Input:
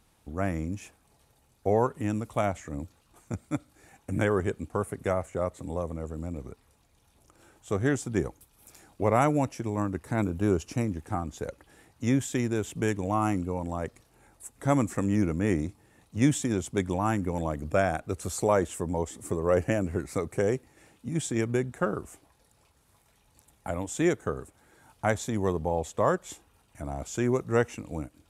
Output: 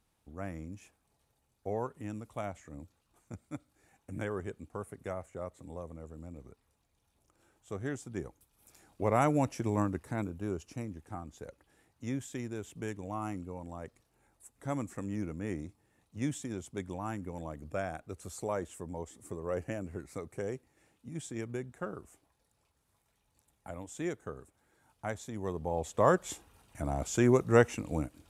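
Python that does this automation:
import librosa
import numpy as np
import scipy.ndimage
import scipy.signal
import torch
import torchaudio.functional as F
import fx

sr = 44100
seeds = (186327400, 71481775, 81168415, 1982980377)

y = fx.gain(x, sr, db=fx.line((8.26, -11.0), (9.75, 0.0), (10.39, -11.0), (25.34, -11.0), (26.19, 1.5)))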